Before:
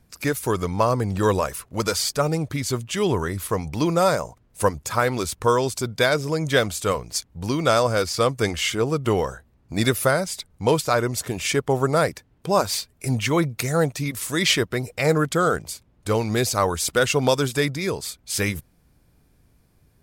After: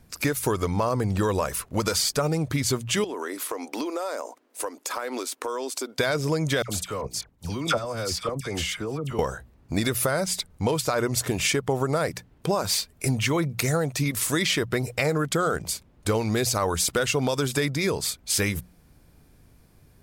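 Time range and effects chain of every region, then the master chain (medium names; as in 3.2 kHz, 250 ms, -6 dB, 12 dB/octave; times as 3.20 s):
3.04–5.99 s: elliptic high-pass 260 Hz + compression 8:1, threshold -31 dBFS
6.62–9.19 s: level held to a coarse grid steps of 17 dB + phase dispersion lows, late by 69 ms, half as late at 1.5 kHz
whole clip: hum notches 60/120/180 Hz; peak limiter -12.5 dBFS; compression, threshold -25 dBFS; trim +4.5 dB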